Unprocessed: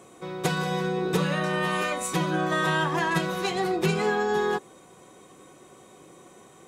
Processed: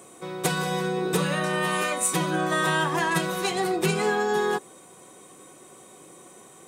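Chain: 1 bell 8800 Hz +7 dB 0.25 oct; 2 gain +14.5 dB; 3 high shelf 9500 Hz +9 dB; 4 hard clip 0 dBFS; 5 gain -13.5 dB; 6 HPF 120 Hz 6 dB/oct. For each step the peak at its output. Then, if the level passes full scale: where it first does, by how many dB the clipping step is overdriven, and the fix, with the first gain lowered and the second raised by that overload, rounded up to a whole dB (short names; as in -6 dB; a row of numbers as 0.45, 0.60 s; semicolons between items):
-11.0, +3.5, +5.0, 0.0, -13.5, -11.5 dBFS; step 2, 5.0 dB; step 2 +9.5 dB, step 5 -8.5 dB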